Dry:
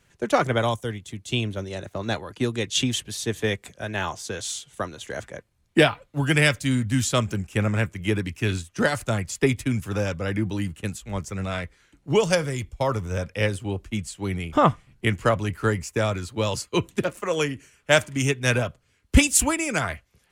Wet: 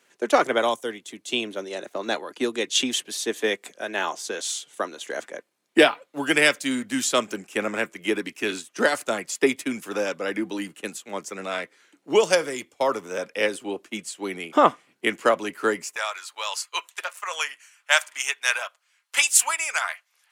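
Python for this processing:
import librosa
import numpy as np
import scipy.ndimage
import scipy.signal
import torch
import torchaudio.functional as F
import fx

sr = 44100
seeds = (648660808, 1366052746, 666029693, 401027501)

y = fx.highpass(x, sr, hz=fx.steps((0.0, 270.0), (15.96, 850.0)), slope=24)
y = y * librosa.db_to_amplitude(2.0)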